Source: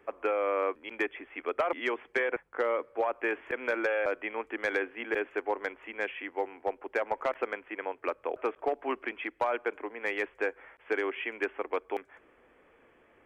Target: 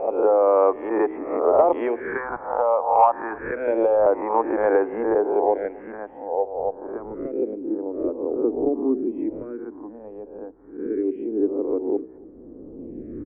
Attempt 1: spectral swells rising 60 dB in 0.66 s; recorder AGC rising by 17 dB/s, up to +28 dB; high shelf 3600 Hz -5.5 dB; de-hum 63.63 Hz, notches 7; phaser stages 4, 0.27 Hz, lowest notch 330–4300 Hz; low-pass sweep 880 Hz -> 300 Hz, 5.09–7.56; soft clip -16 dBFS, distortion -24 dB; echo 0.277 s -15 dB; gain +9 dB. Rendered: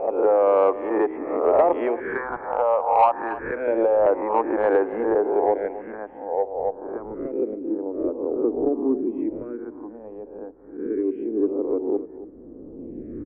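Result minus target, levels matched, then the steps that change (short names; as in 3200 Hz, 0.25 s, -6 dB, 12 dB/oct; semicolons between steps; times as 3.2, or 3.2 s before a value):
soft clip: distortion +13 dB; echo-to-direct +9 dB
change: soft clip -8.5 dBFS, distortion -37 dB; change: echo 0.277 s -24 dB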